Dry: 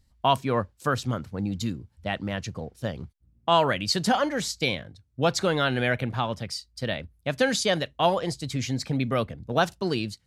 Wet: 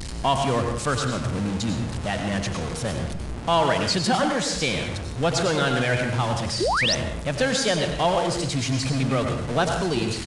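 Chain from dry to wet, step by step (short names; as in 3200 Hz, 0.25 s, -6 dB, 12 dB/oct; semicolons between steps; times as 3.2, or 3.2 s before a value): zero-crossing step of -24.5 dBFS; on a send at -4 dB: reverb RT60 0.70 s, pre-delay 89 ms; on the sum: painted sound rise, 6.6–6.95, 310–6400 Hz -20 dBFS; downsampling 22050 Hz; gain -2 dB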